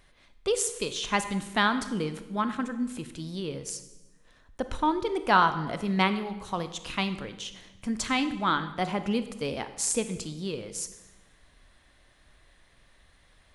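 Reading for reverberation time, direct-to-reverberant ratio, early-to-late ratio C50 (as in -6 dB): 1.1 s, 10.0 dB, 11.5 dB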